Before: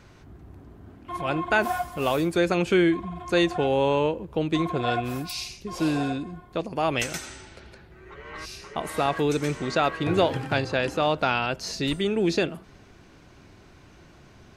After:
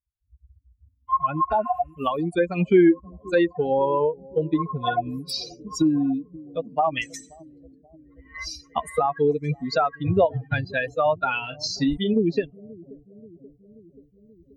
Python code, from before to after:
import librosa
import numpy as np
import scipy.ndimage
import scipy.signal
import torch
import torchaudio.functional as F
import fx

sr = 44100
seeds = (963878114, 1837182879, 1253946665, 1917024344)

y = fx.bin_expand(x, sr, power=3.0)
y = fx.recorder_agc(y, sr, target_db=-21.0, rise_db_per_s=12.0, max_gain_db=30)
y = fx.spec_repair(y, sr, seeds[0], start_s=1.54, length_s=0.37, low_hz=1200.0, high_hz=3000.0, source='both')
y = fx.env_lowpass_down(y, sr, base_hz=1500.0, full_db=-25.5)
y = fx.doubler(y, sr, ms=34.0, db=-10.0, at=(11.41, 12.14))
y = fx.echo_bbd(y, sr, ms=531, stages=2048, feedback_pct=66, wet_db=-21.5)
y = y * 10.0 ** (8.0 / 20.0)